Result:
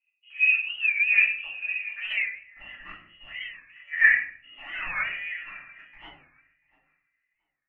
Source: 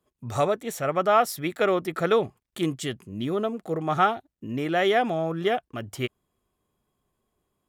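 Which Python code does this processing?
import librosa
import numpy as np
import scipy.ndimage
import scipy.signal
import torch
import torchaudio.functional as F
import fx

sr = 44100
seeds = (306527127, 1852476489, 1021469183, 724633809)

y = fx.chopper(x, sr, hz=0.51, depth_pct=65, duty_pct=75)
y = fx.echo_thinned(y, sr, ms=689, feedback_pct=19, hz=290.0, wet_db=-22)
y = fx.level_steps(y, sr, step_db=10)
y = fx.filter_sweep_bandpass(y, sr, from_hz=540.0, to_hz=1200.0, start_s=1.42, end_s=2.68, q=6.4)
y = fx.freq_invert(y, sr, carrier_hz=3100)
y = fx.transient(y, sr, attack_db=-6, sustain_db=2)
y = fx.room_shoebox(y, sr, seeds[0], volume_m3=64.0, walls='mixed', distance_m=2.4)
y = fx.record_warp(y, sr, rpm=45.0, depth_cents=160.0)
y = y * 10.0 ** (4.0 / 20.0)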